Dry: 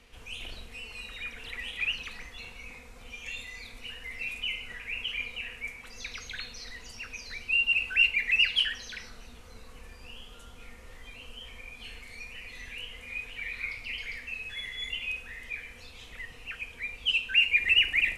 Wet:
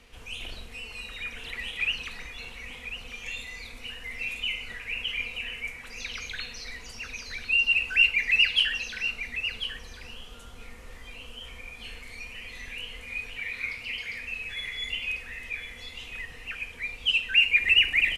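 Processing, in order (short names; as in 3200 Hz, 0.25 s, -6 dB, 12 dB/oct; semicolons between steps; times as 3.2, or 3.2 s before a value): 13.37–14.19 HPF 78 Hz; on a send: echo 1.045 s -10 dB; on the sum: gain +2.5 dB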